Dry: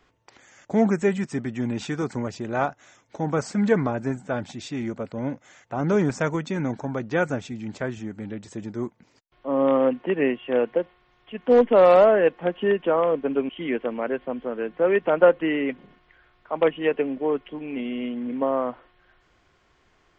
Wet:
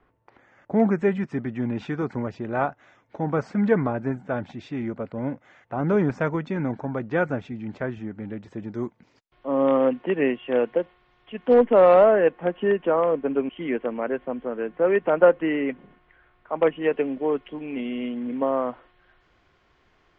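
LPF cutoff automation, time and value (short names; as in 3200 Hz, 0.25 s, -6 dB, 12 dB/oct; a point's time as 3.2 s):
1600 Hz
from 0.8 s 2400 Hz
from 8.72 s 4800 Hz
from 11.54 s 2500 Hz
from 16.92 s 4800 Hz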